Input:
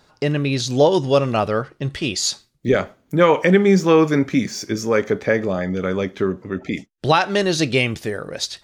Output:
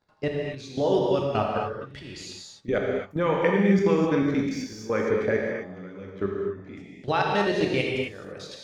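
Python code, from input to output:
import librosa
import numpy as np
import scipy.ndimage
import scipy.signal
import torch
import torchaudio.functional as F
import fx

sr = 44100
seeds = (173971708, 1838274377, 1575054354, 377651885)

y = fx.high_shelf(x, sr, hz=4900.0, db=-11.5)
y = fx.level_steps(y, sr, step_db=19)
y = fx.rev_gated(y, sr, seeds[0], gate_ms=290, shape='flat', drr_db=-1.5)
y = y * librosa.db_to_amplitude(-5.0)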